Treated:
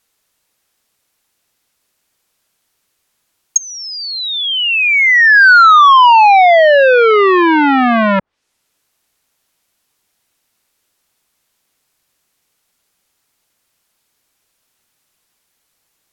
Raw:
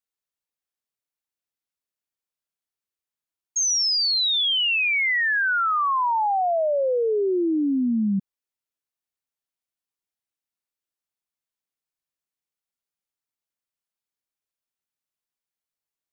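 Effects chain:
treble cut that deepens with the level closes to 1,000 Hz, closed at −22.5 dBFS
boost into a limiter +25.5 dB
saturating transformer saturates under 980 Hz

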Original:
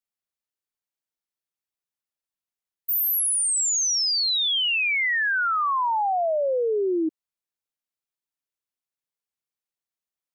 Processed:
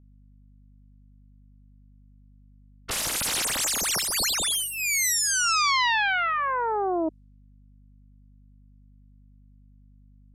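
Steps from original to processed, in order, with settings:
phase distortion by the signal itself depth 0.48 ms
low-pass filter 12,000 Hz 24 dB per octave
low-pass that shuts in the quiet parts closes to 2,000 Hz, open at −26.5 dBFS
mains hum 50 Hz, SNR 25 dB

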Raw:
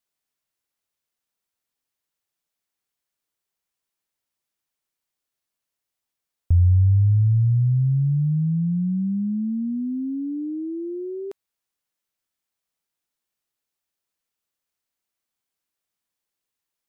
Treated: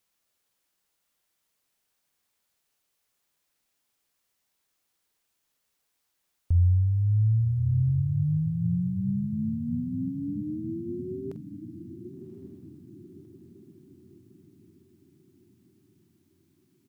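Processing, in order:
bit-depth reduction 12 bits, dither triangular
double-tracking delay 46 ms −13 dB
feedback delay with all-pass diffusion 1,114 ms, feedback 47%, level −10 dB
level −6 dB

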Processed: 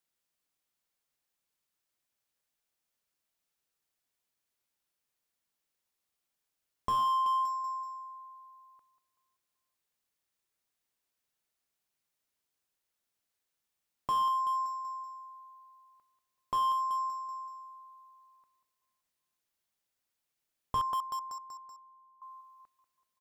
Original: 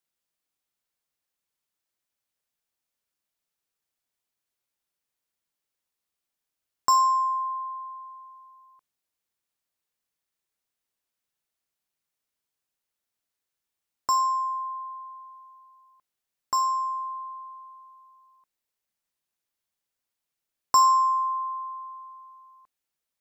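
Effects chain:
0:20.81–0:22.22: resonant band-pass 220 Hz, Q 1.3
repeating echo 190 ms, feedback 52%, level −13 dB
slew-rate limiting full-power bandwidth 48 Hz

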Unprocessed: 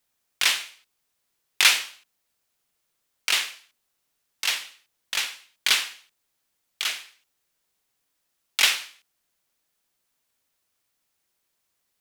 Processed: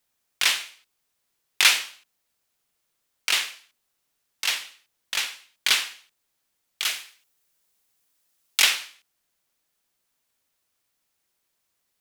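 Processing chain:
0:06.82–0:08.62: high-shelf EQ 7,800 Hz → 4,100 Hz +6.5 dB

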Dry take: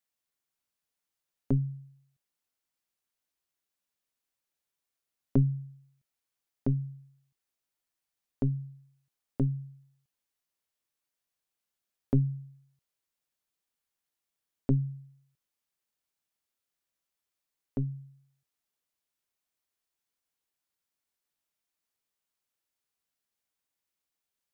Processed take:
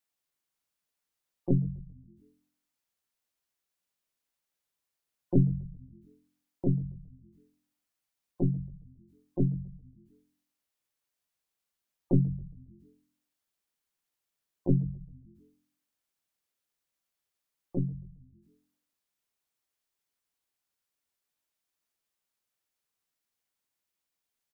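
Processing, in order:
gate on every frequency bin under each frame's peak −25 dB strong
pitch-shifted copies added +5 semitones −5 dB
echo with shifted repeats 138 ms, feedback 56%, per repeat −87 Hz, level −19.5 dB

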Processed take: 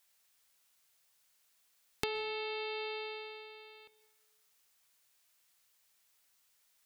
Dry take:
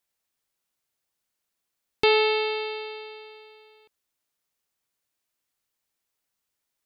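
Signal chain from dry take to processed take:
parametric band 320 Hz −11 dB 0.25 octaves
hum removal 200.4 Hz, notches 35
downward compressor 16 to 1, threshold −34 dBFS, peak gain reduction 18 dB
dense smooth reverb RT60 1.3 s, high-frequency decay 0.5×, pre-delay 110 ms, DRR 19 dB
one half of a high-frequency compander encoder only

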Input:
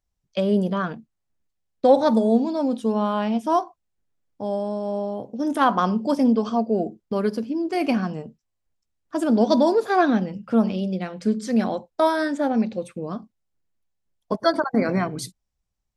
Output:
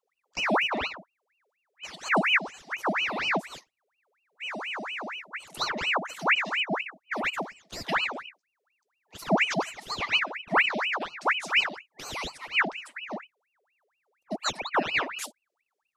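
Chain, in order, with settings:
brick-wall band-stop 240–1,300 Hz
ring modulator whose carrier an LFO sweeps 1,600 Hz, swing 75%, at 4.2 Hz

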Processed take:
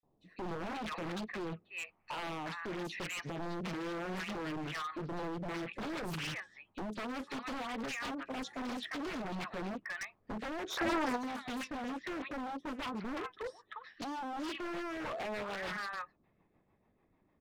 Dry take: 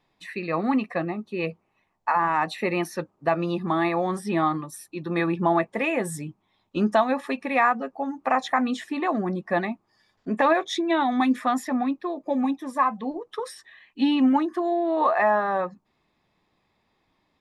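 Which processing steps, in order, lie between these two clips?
low-pass that shuts in the quiet parts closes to 1,500 Hz, open at −17 dBFS
three-band delay without the direct sound highs, lows, mids 30/380 ms, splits 1,100/3,800 Hz
dynamic equaliser 790 Hz, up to −8 dB, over −38 dBFS, Q 1.1
downward compressor 6 to 1, threshold −27 dBFS, peak gain reduction 10 dB
brickwall limiter −26.5 dBFS, peak gain reduction 7.5 dB
rotating-speaker cabinet horn 0.85 Hz, later 6.7 Hz, at 0:02.97
wave folding −35.5 dBFS
gain on a spectral selection 0:10.70–0:11.16, 330–1,600 Hz +11 dB
highs frequency-modulated by the lows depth 0.71 ms
level +1.5 dB

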